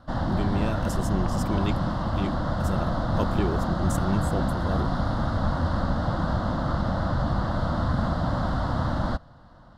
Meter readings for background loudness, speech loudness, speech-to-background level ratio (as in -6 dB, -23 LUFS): -27.0 LUFS, -32.0 LUFS, -5.0 dB